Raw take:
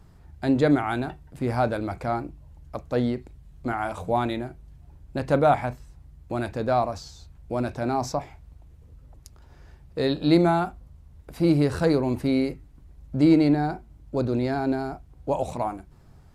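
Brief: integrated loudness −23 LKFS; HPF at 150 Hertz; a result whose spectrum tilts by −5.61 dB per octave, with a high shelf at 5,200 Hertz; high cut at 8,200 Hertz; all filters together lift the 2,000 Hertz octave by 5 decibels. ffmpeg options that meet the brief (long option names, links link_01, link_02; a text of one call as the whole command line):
ffmpeg -i in.wav -af "highpass=150,lowpass=8200,equalizer=frequency=2000:width_type=o:gain=8,highshelf=frequency=5200:gain=-8,volume=2dB" out.wav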